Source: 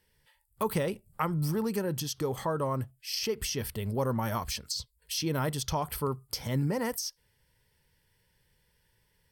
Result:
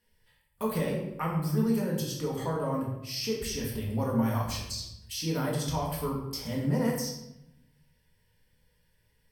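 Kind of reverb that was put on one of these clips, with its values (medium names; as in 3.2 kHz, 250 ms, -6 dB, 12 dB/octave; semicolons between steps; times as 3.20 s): simulated room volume 290 m³, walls mixed, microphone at 1.8 m; trim -6 dB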